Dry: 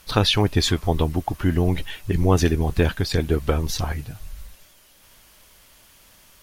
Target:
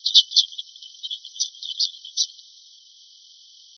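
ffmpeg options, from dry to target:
-af "apsyclip=4.22,atempo=1.7,afftfilt=real='re*between(b*sr/4096,3000,6100)':imag='im*between(b*sr/4096,3000,6100)':win_size=4096:overlap=0.75,volume=0.891"

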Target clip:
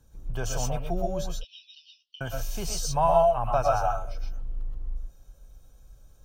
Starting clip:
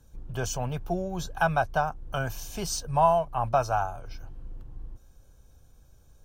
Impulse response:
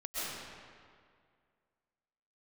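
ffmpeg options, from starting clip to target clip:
-filter_complex "[0:a]asettb=1/sr,asplit=3[s0][s1][s2];[s0]atrim=end=1.314[s3];[s1]atrim=start=1.31:end=2.21,asetpts=PTS-STARTPTS,afade=t=in:d=0.004:c=qsin,afade=t=out:st=0.896:d=0.004:c=qsin,asuperpass=centerf=3900:order=12:qfactor=1.5[s4];[s2]atrim=start=2.206[s5];[s3][s4]acrossfade=d=0.004:c1=hsin:c2=qsin[s6];[s6][s5]acrossfade=d=0.004:c1=qsin:c2=hsin[s7];[1:a]atrim=start_sample=2205,afade=t=out:st=0.18:d=0.01,atrim=end_sample=8379[s8];[s7][s8]afir=irnorm=-1:irlink=0,volume=1.5"

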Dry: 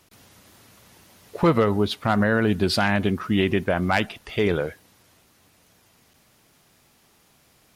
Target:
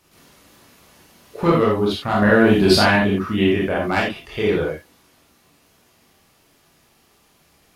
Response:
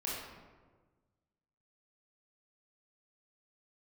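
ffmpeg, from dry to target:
-filter_complex "[0:a]asettb=1/sr,asplit=3[s0][s1][s2];[s0]atrim=end=2.224[s3];[s1]atrim=start=2.22:end=2.96,asetpts=PTS-STARTPTS,afade=t=in:d=0.004:c=qsin,afade=t=out:st=0.736:d=0.004:c=qsin,acontrast=47[s4];[s2]atrim=start=2.956[s5];[s3][s4]acrossfade=d=0.004:c1=hsin:c2=qsin[s6];[s6][s5]acrossfade=d=0.004:c1=qsin:c2=hsin[s7];[1:a]atrim=start_sample=2205,atrim=end_sample=4410[s8];[s7][s8]afir=irnorm=-1:irlink=0,volume=1.12"

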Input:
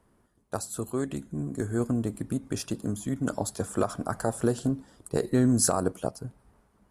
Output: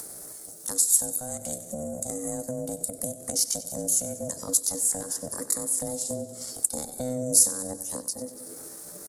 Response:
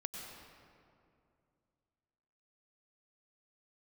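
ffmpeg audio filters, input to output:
-filter_complex "[0:a]atempo=0.76,equalizer=f=580:w=2.7:g=-8,acrossover=split=160[s0][s1];[s1]acompressor=threshold=0.00891:ratio=6[s2];[s0][s2]amix=inputs=2:normalize=0,aexciter=amount=14.9:drive=5.1:freq=4500,aeval=exprs='val(0)*sin(2*PI*380*n/s)':c=same,asplit=2[s3][s4];[s4]aecho=0:1:94|188|282|376|470:0.168|0.0907|0.049|0.0264|0.0143[s5];[s3][s5]amix=inputs=2:normalize=0,acompressor=mode=upward:threshold=0.0355:ratio=2.5,lowshelf=f=70:g=-8.5,volume=1.33"

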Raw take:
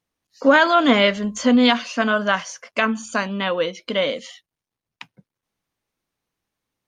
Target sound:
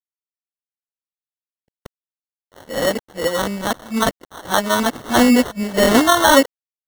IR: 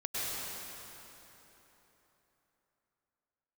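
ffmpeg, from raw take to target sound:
-af "areverse,acrusher=samples=18:mix=1:aa=0.000001,aeval=exprs='sgn(val(0))*max(abs(val(0))-0.00944,0)':c=same,volume=1.33"

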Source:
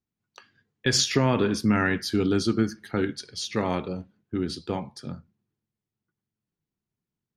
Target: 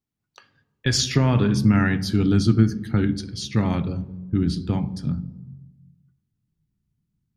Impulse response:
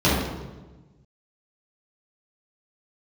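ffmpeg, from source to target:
-filter_complex "[0:a]asplit=2[s0][s1];[1:a]atrim=start_sample=2205[s2];[s1][s2]afir=irnorm=-1:irlink=0,volume=0.0168[s3];[s0][s3]amix=inputs=2:normalize=0,asubboost=boost=8.5:cutoff=170"

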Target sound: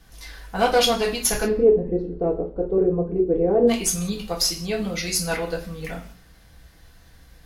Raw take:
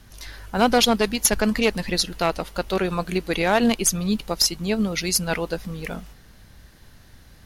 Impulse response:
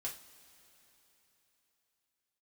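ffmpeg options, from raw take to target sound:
-filter_complex "[0:a]asplit=3[s0][s1][s2];[s0]afade=t=out:st=1.43:d=0.02[s3];[s1]lowpass=f=410:t=q:w=4.9,afade=t=in:st=1.43:d=0.02,afade=t=out:st=3.67:d=0.02[s4];[s2]afade=t=in:st=3.67:d=0.02[s5];[s3][s4][s5]amix=inputs=3:normalize=0[s6];[1:a]atrim=start_sample=2205,afade=t=out:st=0.25:d=0.01,atrim=end_sample=11466[s7];[s6][s7]afir=irnorm=-1:irlink=0"

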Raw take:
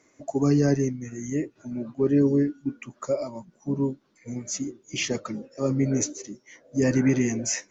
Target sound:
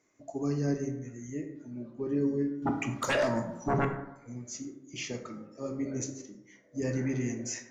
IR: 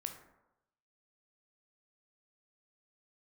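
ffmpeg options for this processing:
-filter_complex "[0:a]asettb=1/sr,asplit=3[s0][s1][s2];[s0]atrim=end=2.624[s3];[s1]atrim=start=2.62:end=3.85,asetpts=PTS-STARTPTS,afade=t=in:d=0.004:c=qsin,afade=t=out:st=1.226:d=0.004:c=qsin,aeval=exprs='0.2*sin(PI/2*5.01*val(0)/0.2)':c=same[s4];[s2]atrim=start=3.846[s5];[s3][s4]acrossfade=d=0.004:c1=hsin:c2=qsin[s6];[s6][s5]acrossfade=d=0.004:c1=qsin:c2=hsin[s7];[1:a]atrim=start_sample=2205[s8];[s7][s8]afir=irnorm=-1:irlink=0,volume=0.422"

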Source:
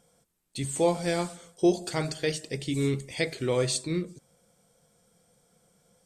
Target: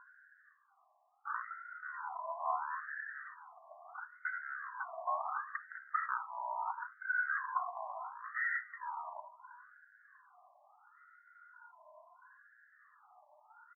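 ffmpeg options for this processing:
-filter_complex "[0:a]afftfilt=real='re*pow(10,17/40*sin(2*PI*(1.6*log(max(b,1)*sr/1024/100)/log(2)-(0.94)*(pts-256)/sr)))':imag='im*pow(10,17/40*sin(2*PI*(1.6*log(max(b,1)*sr/1024/100)/log(2)-(0.94)*(pts-256)/sr)))':win_size=1024:overlap=0.75,acrossover=split=4600[s0][s1];[s1]acompressor=threshold=0.00447:ratio=4:attack=1:release=60[s2];[s0][s2]amix=inputs=2:normalize=0,alimiter=limit=0.119:level=0:latency=1:release=13,areverse,acompressor=threshold=0.0126:ratio=5,areverse,aeval=exprs='0.0355*sin(PI/2*1.78*val(0)/0.0355)':c=same,asetrate=19404,aresample=44100,asuperstop=centerf=2600:order=8:qfactor=1.3,asplit=2[s3][s4];[s4]aecho=0:1:681:0.15[s5];[s3][s5]amix=inputs=2:normalize=0,afftfilt=real='re*between(b*sr/1024,820*pow(1900/820,0.5+0.5*sin(2*PI*0.73*pts/sr))/1.41,820*pow(1900/820,0.5+0.5*sin(2*PI*0.73*pts/sr))*1.41)':imag='im*between(b*sr/1024,820*pow(1900/820,0.5+0.5*sin(2*PI*0.73*pts/sr))/1.41,820*pow(1900/820,0.5+0.5*sin(2*PI*0.73*pts/sr))*1.41)':win_size=1024:overlap=0.75,volume=2.51"

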